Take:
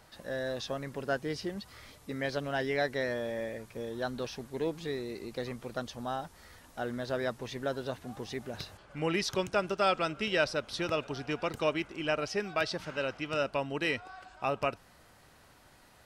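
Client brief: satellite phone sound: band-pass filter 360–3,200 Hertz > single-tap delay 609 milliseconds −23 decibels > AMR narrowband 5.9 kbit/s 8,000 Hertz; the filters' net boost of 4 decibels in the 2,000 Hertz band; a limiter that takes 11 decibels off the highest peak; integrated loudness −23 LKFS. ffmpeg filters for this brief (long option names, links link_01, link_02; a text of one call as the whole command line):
ffmpeg -i in.wav -af "equalizer=frequency=2000:width_type=o:gain=6,alimiter=limit=-22.5dB:level=0:latency=1,highpass=360,lowpass=3200,aecho=1:1:609:0.0708,volume=15dB" -ar 8000 -c:a libopencore_amrnb -b:a 5900 out.amr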